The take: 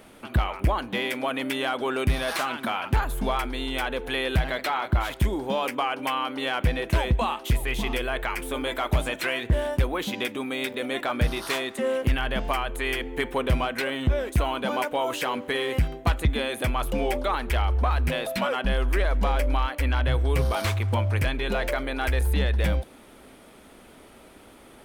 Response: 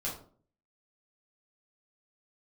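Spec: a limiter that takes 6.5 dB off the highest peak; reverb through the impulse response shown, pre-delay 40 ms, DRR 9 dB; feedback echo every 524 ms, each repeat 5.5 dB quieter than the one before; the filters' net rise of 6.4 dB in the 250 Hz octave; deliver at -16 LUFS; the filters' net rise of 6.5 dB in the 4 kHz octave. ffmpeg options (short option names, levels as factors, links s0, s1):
-filter_complex "[0:a]equalizer=f=250:t=o:g=7.5,equalizer=f=4000:t=o:g=8.5,alimiter=limit=0.178:level=0:latency=1,aecho=1:1:524|1048|1572|2096|2620|3144|3668:0.531|0.281|0.149|0.079|0.0419|0.0222|0.0118,asplit=2[s0][s1];[1:a]atrim=start_sample=2205,adelay=40[s2];[s1][s2]afir=irnorm=-1:irlink=0,volume=0.251[s3];[s0][s3]amix=inputs=2:normalize=0,volume=2.51"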